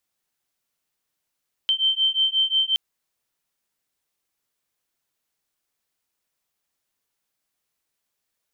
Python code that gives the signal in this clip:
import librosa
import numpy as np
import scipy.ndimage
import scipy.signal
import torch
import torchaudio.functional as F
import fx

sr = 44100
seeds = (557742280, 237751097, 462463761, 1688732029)

y = fx.two_tone_beats(sr, length_s=1.07, hz=3110.0, beat_hz=5.6, level_db=-21.5)